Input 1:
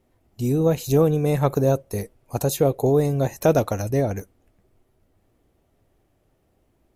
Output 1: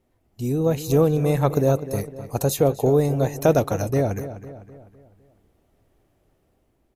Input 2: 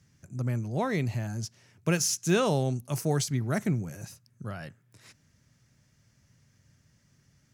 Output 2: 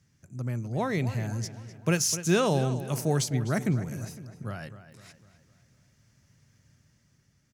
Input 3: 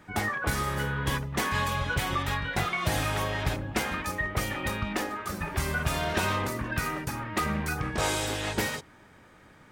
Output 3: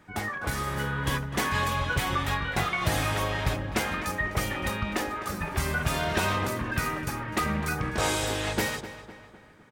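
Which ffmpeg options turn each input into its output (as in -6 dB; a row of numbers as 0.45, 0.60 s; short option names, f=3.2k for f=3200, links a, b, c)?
-filter_complex "[0:a]dynaudnorm=f=210:g=7:m=4dB,asplit=2[a][b];[b]adelay=253,lowpass=f=3.6k:p=1,volume=-12.5dB,asplit=2[c][d];[d]adelay=253,lowpass=f=3.6k:p=1,volume=0.49,asplit=2[e][f];[f]adelay=253,lowpass=f=3.6k:p=1,volume=0.49,asplit=2[g][h];[h]adelay=253,lowpass=f=3.6k:p=1,volume=0.49,asplit=2[i][j];[j]adelay=253,lowpass=f=3.6k:p=1,volume=0.49[k];[c][e][g][i][k]amix=inputs=5:normalize=0[l];[a][l]amix=inputs=2:normalize=0,volume=-3dB"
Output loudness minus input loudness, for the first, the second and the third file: 0.0, +0.5, +1.0 LU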